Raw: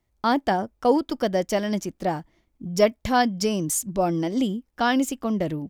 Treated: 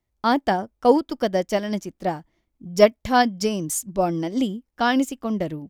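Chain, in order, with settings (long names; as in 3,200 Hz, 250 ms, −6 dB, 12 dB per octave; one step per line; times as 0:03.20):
expander for the loud parts 1.5 to 1, over −33 dBFS
level +5 dB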